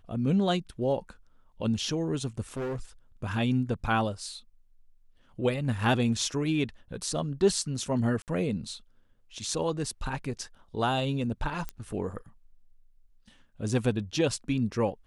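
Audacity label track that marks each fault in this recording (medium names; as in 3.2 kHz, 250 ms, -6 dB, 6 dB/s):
2.570000	2.800000	clipped -30 dBFS
8.220000	8.280000	dropout 58 ms
11.690000	11.690000	pop -19 dBFS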